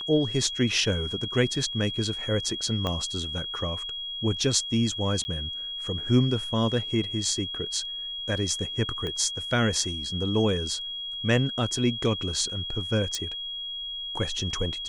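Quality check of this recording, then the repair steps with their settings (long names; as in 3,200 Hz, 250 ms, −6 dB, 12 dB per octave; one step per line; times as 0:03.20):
whistle 3,300 Hz −32 dBFS
0:02.87: click −15 dBFS
0:05.24–0:05.25: drop-out 10 ms
0:09.07: click −20 dBFS
0:13.15: click −16 dBFS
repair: click removal
notch filter 3,300 Hz, Q 30
repair the gap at 0:05.24, 10 ms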